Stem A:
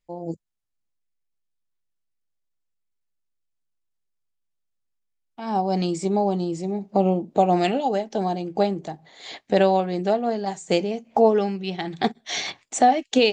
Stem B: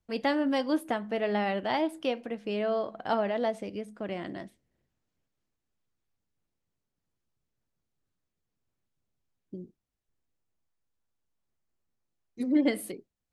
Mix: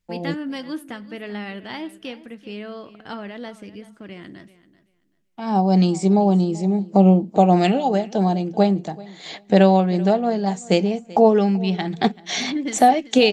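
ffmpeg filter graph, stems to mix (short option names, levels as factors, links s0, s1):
-filter_complex "[0:a]equalizer=f=190:t=o:w=0.3:g=8,volume=1.33,asplit=2[s0][s1];[s1]volume=0.0841[s2];[1:a]equalizer=f=670:t=o:w=1.2:g=-12,volume=1.19,asplit=2[s3][s4];[s4]volume=0.141[s5];[s2][s5]amix=inputs=2:normalize=0,aecho=0:1:385|770|1155:1|0.19|0.0361[s6];[s0][s3][s6]amix=inputs=3:normalize=0"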